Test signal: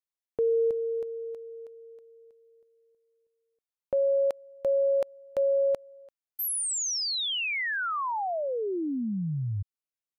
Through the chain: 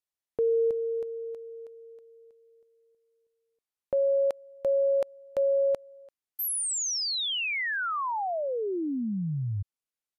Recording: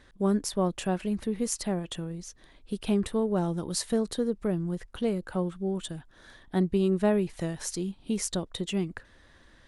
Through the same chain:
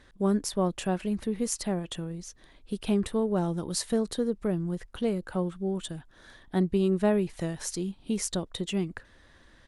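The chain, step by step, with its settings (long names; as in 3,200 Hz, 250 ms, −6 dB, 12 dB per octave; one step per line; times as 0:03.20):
downsampling to 32,000 Hz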